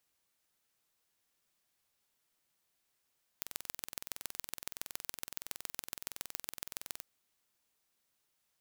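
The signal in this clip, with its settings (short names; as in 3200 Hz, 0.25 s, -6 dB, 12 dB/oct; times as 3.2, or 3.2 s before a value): pulse train 21.5/s, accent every 3, -9.5 dBFS 3.59 s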